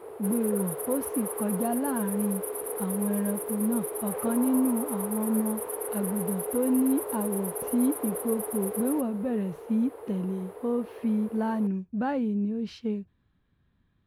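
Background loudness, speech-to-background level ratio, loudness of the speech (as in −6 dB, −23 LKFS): −33.5 LKFS, 4.0 dB, −29.5 LKFS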